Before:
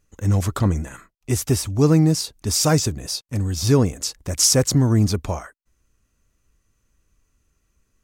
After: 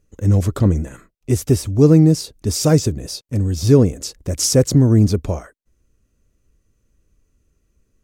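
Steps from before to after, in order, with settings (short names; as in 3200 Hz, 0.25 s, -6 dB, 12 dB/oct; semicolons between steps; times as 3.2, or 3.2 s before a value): resonant low shelf 660 Hz +6.5 dB, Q 1.5; gain -2.5 dB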